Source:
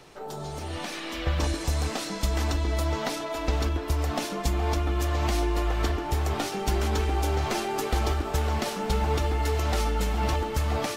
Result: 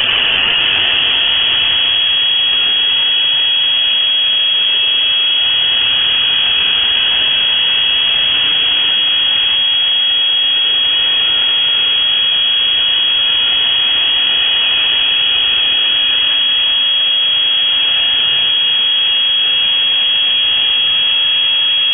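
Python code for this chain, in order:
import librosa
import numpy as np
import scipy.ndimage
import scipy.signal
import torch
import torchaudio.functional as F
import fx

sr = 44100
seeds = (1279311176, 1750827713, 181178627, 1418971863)

p1 = fx.fade_out_tail(x, sr, length_s=0.81)
p2 = scipy.signal.sosfilt(scipy.signal.butter(2, 300.0, 'highpass', fs=sr, output='sos'), p1)
p3 = fx.rider(p2, sr, range_db=4, speed_s=0.5)
p4 = p2 + (p3 * 10.0 ** (-2.0 / 20.0))
p5 = fx.tilt_shelf(p4, sr, db=6.5, hz=1300.0)
p6 = fx.hum_notches(p5, sr, base_hz=60, count=10)
p7 = fx.sample_hold(p6, sr, seeds[0], rate_hz=1100.0, jitter_pct=20)
p8 = fx.stretch_vocoder_free(p7, sr, factor=2.0)
p9 = fx.dereverb_blind(p8, sr, rt60_s=1.0)
p10 = p9 + fx.echo_feedback(p9, sr, ms=367, feedback_pct=53, wet_db=-7.0, dry=0)
p11 = fx.rev_freeverb(p10, sr, rt60_s=3.3, hf_ratio=0.6, predelay_ms=45, drr_db=-6.5)
p12 = fx.freq_invert(p11, sr, carrier_hz=3300)
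p13 = fx.env_flatten(p12, sr, amount_pct=100)
y = p13 * 10.0 ** (-3.5 / 20.0)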